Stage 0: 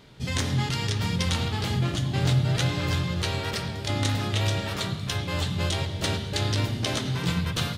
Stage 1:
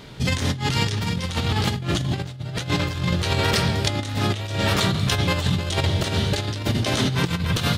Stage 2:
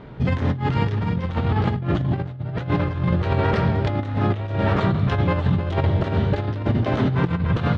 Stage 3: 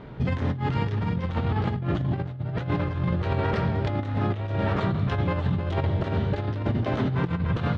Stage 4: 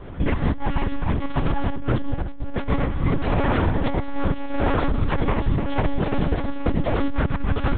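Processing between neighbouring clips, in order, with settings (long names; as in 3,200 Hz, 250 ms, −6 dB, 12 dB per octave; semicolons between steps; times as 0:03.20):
compressor whose output falls as the input rises −29 dBFS, ratio −0.5; level +7 dB
low-pass filter 1,400 Hz 12 dB per octave; level +2.5 dB
downward compressor 2 to 1, threshold −22 dBFS, peak gain reduction 4.5 dB; level −1.5 dB
one-pitch LPC vocoder at 8 kHz 280 Hz; level +5 dB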